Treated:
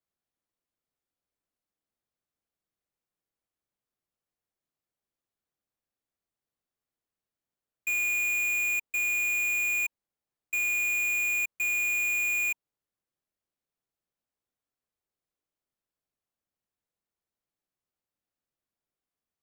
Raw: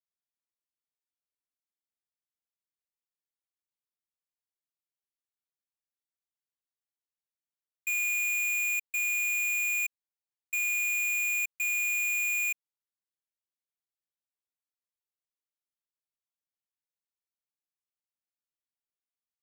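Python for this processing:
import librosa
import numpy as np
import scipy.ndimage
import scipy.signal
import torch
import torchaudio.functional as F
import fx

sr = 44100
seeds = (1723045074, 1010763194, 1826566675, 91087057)

y = fx.tilt_shelf(x, sr, db=6.5, hz=1400.0)
y = fx.notch(y, sr, hz=930.0, q=18.0)
y = y * 10.0 ** (5.0 / 20.0)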